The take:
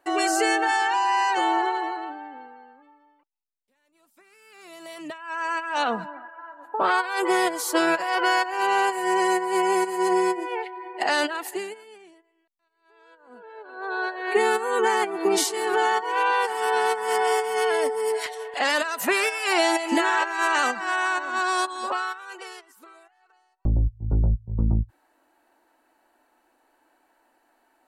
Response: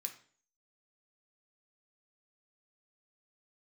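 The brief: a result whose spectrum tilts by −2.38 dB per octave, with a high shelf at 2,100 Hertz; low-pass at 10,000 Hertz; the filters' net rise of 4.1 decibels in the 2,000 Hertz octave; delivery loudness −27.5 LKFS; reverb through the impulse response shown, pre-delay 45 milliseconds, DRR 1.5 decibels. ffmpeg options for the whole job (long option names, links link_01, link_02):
-filter_complex "[0:a]lowpass=10000,equalizer=frequency=2000:width_type=o:gain=3.5,highshelf=frequency=2100:gain=3.5,asplit=2[link_01][link_02];[1:a]atrim=start_sample=2205,adelay=45[link_03];[link_02][link_03]afir=irnorm=-1:irlink=0,volume=2dB[link_04];[link_01][link_04]amix=inputs=2:normalize=0,volume=-8dB"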